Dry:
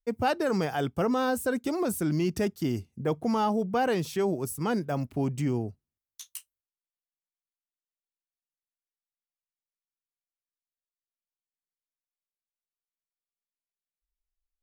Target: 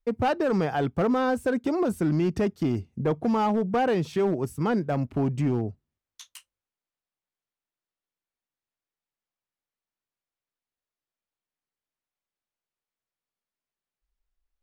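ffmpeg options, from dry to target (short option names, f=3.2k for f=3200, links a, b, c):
-filter_complex "[0:a]asplit=2[a][b];[b]acompressor=threshold=-35dB:ratio=8,volume=1.5dB[c];[a][c]amix=inputs=2:normalize=0,aemphasis=mode=reproduction:type=75fm,volume=18.5dB,asoftclip=hard,volume=-18.5dB"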